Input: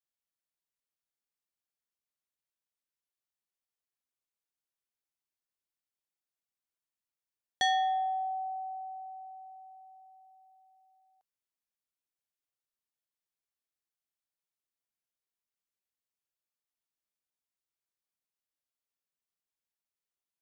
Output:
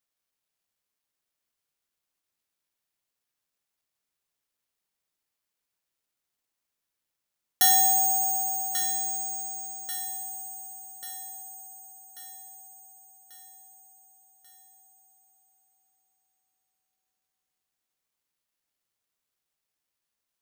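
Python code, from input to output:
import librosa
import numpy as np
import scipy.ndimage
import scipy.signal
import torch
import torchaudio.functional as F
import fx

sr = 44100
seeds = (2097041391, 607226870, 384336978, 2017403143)

y = (np.kron(x[::6], np.eye(6)[0]) * 6)[:len(x)]
y = fx.echo_feedback(y, sr, ms=1139, feedback_pct=53, wet_db=-9.5)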